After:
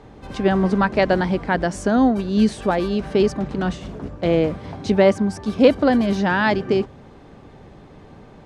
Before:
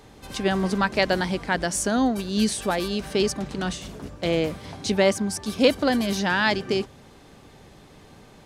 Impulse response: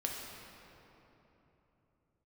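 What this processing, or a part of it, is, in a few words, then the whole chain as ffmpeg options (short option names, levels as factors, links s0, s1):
through cloth: -af "lowpass=9000,highshelf=f=2700:g=-16,volume=2"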